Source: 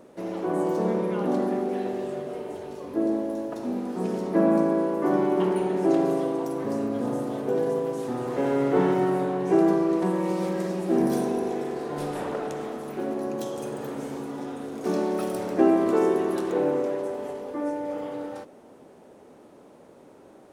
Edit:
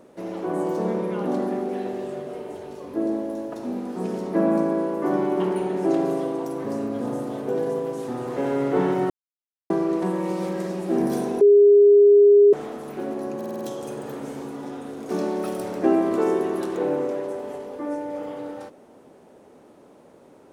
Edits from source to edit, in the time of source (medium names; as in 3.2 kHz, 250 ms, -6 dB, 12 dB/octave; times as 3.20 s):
9.10–9.70 s: mute
11.41–12.53 s: bleep 408 Hz -9.5 dBFS
13.36 s: stutter 0.05 s, 6 plays